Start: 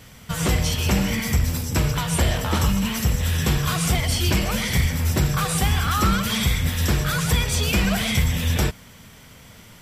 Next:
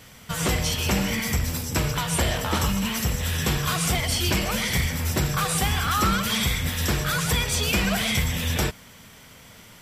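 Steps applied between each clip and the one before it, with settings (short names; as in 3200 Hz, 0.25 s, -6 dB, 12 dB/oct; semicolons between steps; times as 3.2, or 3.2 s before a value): low shelf 210 Hz -6 dB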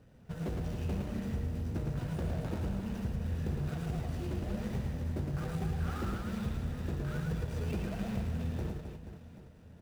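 median filter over 41 samples; compressor, threshold -25 dBFS, peak gain reduction 6 dB; reverse bouncing-ball echo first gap 0.11 s, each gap 1.4×, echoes 5; gain -7.5 dB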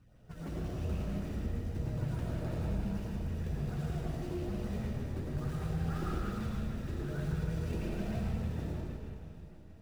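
LFO notch saw up 6.4 Hz 430–4000 Hz; flange 1.1 Hz, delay 0.7 ms, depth 3 ms, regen +42%; digital reverb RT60 1.5 s, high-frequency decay 0.6×, pre-delay 50 ms, DRR -2.5 dB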